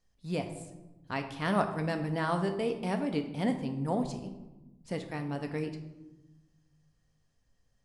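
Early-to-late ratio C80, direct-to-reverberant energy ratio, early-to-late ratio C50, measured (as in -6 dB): 11.0 dB, 6.0 dB, 9.0 dB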